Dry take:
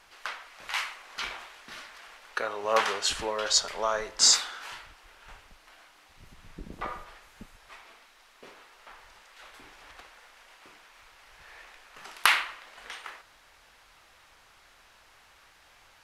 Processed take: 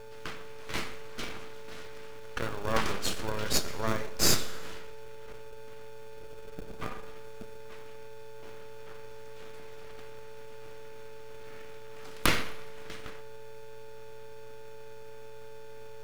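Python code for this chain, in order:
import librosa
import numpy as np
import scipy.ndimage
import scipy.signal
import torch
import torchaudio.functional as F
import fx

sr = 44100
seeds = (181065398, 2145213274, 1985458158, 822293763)

p1 = x + 10.0 ** (-40.0 / 20.0) * np.sin(2.0 * np.pi * 440.0 * np.arange(len(x)) / sr)
p2 = np.maximum(p1, 0.0)
p3 = fx.sample_hold(p2, sr, seeds[0], rate_hz=1000.0, jitter_pct=0)
p4 = p2 + F.gain(torch.from_numpy(p3), -4.0).numpy()
p5 = fx.rev_schroeder(p4, sr, rt60_s=1.0, comb_ms=29, drr_db=15.5)
y = F.gain(torch.from_numpy(p5), -1.5).numpy()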